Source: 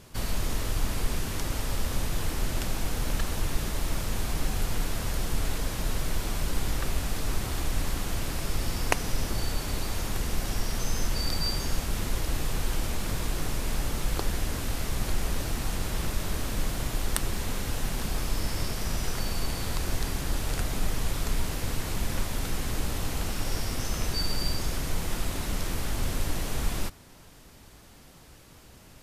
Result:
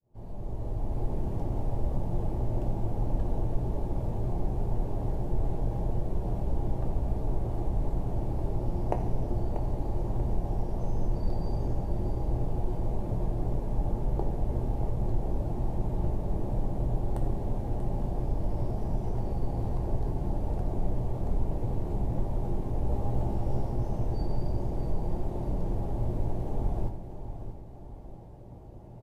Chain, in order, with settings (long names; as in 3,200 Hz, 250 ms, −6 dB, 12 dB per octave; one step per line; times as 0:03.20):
fade in at the beginning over 1.11 s
drawn EQ curve 830 Hz 0 dB, 1,300 Hz −21 dB, 5,100 Hz −29 dB
in parallel at 0 dB: downward compressor, threshold −38 dBFS, peak gain reduction 18.5 dB
0:22.85–0:23.69: on the sum: double-tracking delay 15 ms −4 dB
repeating echo 638 ms, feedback 42%, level −10.5 dB
on a send at −3.5 dB: convolution reverb RT60 0.70 s, pre-delay 4 ms
on the sum: level −2.5 dB